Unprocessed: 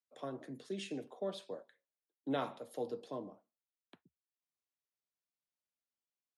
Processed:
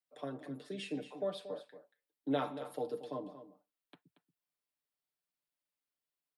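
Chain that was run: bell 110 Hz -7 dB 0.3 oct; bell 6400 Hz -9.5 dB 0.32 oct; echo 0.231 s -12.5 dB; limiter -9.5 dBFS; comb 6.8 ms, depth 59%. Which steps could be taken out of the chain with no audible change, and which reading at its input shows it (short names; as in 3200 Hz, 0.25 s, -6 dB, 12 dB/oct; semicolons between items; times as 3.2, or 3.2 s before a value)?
limiter -9.5 dBFS: input peak -24.0 dBFS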